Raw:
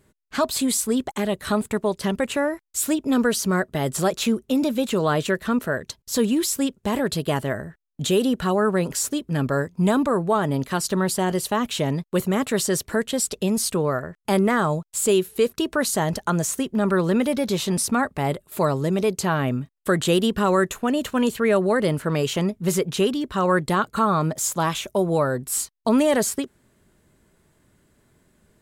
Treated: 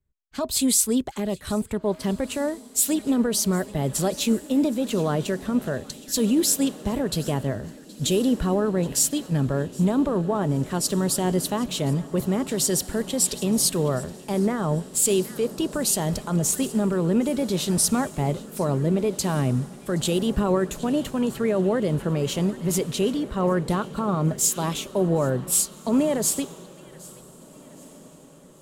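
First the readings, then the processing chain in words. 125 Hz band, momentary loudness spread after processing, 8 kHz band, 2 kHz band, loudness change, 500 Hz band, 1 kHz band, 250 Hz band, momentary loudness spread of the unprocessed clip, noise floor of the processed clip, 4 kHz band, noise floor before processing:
+0.5 dB, 7 LU, +3.0 dB, -8.5 dB, -1.0 dB, -3.0 dB, -6.0 dB, -0.5 dB, 5 LU, -47 dBFS, -1.0 dB, -65 dBFS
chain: bass shelf 85 Hz +10 dB; feedback echo behind a high-pass 772 ms, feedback 43%, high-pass 2 kHz, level -14 dB; peak limiter -14 dBFS, peak gain reduction 6 dB; dynamic bell 1.5 kHz, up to -7 dB, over -39 dBFS, Q 1.1; echo that smears into a reverb 1792 ms, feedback 65%, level -14.5 dB; three bands expanded up and down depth 70%

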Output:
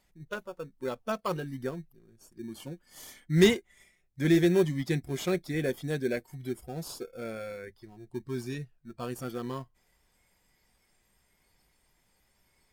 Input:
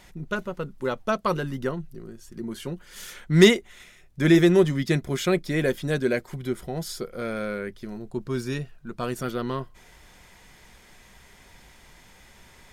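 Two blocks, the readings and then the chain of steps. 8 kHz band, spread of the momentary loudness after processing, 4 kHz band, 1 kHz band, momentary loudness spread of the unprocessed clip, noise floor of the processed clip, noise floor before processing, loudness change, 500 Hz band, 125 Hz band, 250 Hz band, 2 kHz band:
-6.0 dB, 20 LU, -7.5 dB, -8.0 dB, 20 LU, -71 dBFS, -53 dBFS, -6.0 dB, -6.0 dB, -6.0 dB, -6.0 dB, -8.0 dB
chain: spectral noise reduction 13 dB; treble shelf 12 kHz +7.5 dB; in parallel at -10 dB: sample-and-hold 22×; on the sum: trim -8 dB

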